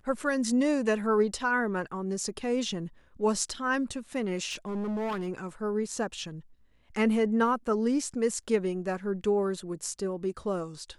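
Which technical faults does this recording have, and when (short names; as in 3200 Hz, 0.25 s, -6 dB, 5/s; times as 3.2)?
4.5–5.29 clipped -29 dBFS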